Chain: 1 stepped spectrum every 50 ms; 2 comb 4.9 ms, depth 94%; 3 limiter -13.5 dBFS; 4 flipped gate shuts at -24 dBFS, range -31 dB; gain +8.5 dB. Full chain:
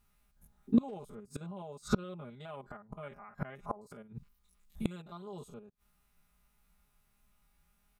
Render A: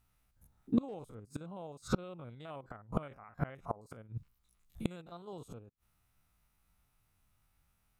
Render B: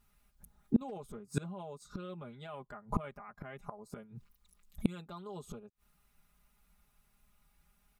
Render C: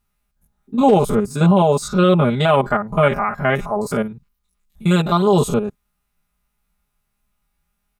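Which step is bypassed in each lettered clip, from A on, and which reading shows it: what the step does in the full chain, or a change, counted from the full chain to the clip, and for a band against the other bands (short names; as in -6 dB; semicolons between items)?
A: 2, 125 Hz band +2.5 dB; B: 1, 125 Hz band +2.5 dB; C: 4, momentary loudness spread change -10 LU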